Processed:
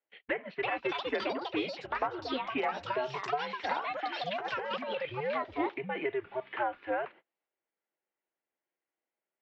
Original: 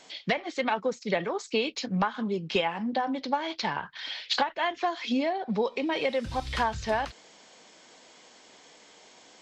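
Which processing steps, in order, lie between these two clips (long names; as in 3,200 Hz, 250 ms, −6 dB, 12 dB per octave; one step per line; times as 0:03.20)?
0:00.64–0:01.13: samples sorted by size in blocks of 16 samples
single-sideband voice off tune −130 Hz 400–2,700 Hz
noise gate −47 dBFS, range −32 dB
delay with pitch and tempo change per echo 409 ms, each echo +5 semitones, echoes 2
0:04.12–0:05.15: compressor whose output falls as the input rises −30 dBFS, ratio −1
level −4.5 dB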